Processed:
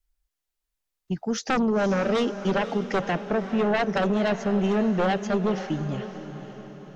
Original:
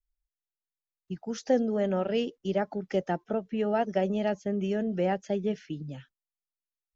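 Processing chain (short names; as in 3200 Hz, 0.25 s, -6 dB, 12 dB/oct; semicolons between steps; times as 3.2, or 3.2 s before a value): sine folder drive 10 dB, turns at -14 dBFS; diffused feedback echo 0.529 s, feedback 50%, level -11 dB; gain -5 dB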